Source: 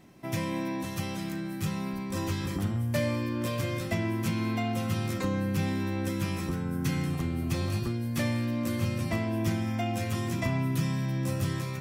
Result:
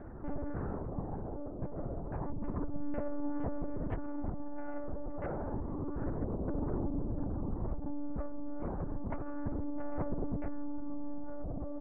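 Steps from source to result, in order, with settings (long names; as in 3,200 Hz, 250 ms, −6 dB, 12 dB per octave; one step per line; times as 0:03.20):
Butterworth low-pass 650 Hz 48 dB per octave
parametric band 250 Hz −3.5 dB 0.74 octaves
comb filter 7.4 ms, depth 35%
downward compressor 16 to 1, threshold −31 dBFS, peak gain reduction 10 dB
harmonic generator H 3 −32 dB, 4 −25 dB, 6 −10 dB, 7 −41 dB, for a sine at −24 dBFS
phase shifter 0.3 Hz, delay 1.7 ms, feedback 34%
backwards echo 505 ms −10 dB
one-pitch LPC vocoder at 8 kHz 290 Hz
level −3 dB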